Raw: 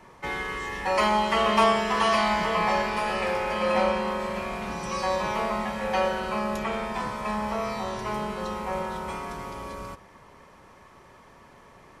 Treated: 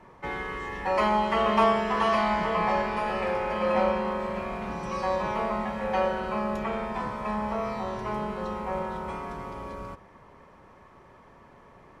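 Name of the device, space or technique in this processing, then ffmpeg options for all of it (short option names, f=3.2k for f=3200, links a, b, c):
through cloth: -af "highshelf=f=3.1k:g=-13"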